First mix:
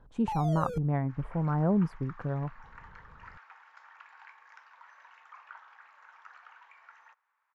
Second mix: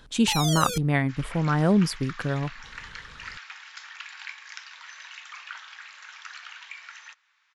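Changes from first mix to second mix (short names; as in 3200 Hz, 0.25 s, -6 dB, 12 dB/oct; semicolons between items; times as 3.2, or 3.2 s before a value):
speech +4.0 dB; master: remove EQ curve 170 Hz 0 dB, 250 Hz -4 dB, 920 Hz 0 dB, 3600 Hz -27 dB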